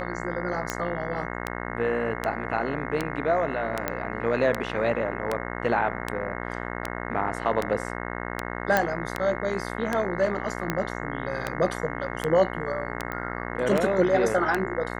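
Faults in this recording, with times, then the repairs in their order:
buzz 60 Hz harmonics 36 -33 dBFS
tick 78 rpm -11 dBFS
3.88 s: pop -11 dBFS
8.77 s: pop -7 dBFS
13.12 s: pop -18 dBFS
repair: de-click; de-hum 60 Hz, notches 36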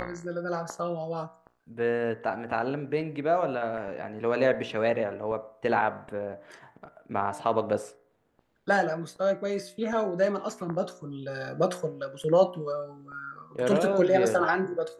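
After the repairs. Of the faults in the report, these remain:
8.77 s: pop

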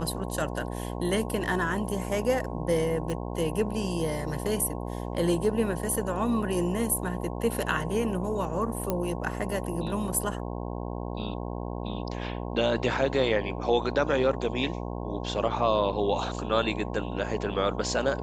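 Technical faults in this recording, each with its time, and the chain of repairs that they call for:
buzz 60 Hz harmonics 18 -34 dBFS
3.10 s: pop -20 dBFS
8.90 s: pop -13 dBFS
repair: de-click; de-hum 60 Hz, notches 18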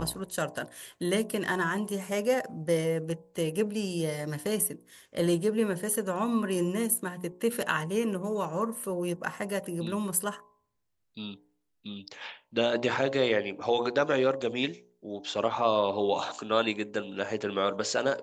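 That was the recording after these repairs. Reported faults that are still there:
3.10 s: pop

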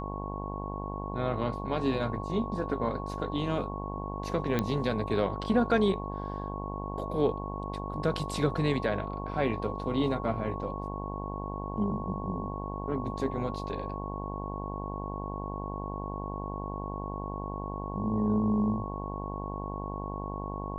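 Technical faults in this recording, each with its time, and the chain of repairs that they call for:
buzz 50 Hz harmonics 21 -37 dBFS
whine 1.1 kHz -39 dBFS
4.59 s: pop -14 dBFS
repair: de-click; band-stop 1.1 kHz, Q 30; de-hum 50 Hz, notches 21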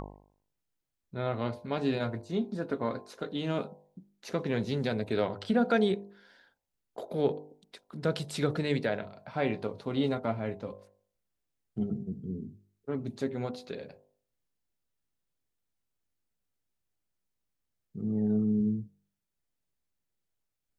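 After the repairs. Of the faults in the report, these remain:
nothing left

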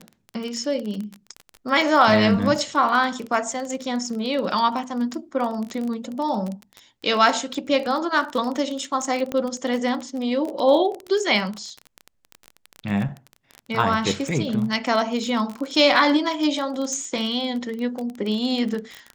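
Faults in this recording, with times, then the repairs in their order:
crackle 21 per s -26 dBFS
9.32 s: pop -14 dBFS
16.93 s: pop -18 dBFS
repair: de-click

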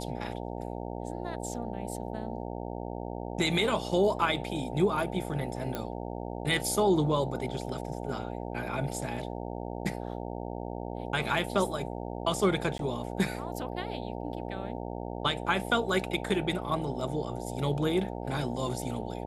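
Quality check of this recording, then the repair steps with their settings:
buzz 60 Hz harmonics 15 -37 dBFS
5.75 s: pop -18 dBFS
12.78–12.79 s: dropout 12 ms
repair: de-click; de-hum 60 Hz, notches 15; interpolate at 12.78 s, 12 ms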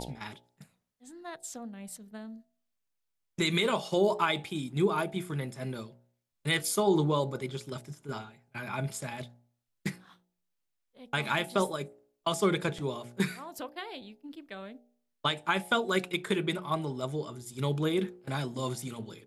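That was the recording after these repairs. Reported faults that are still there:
nothing left

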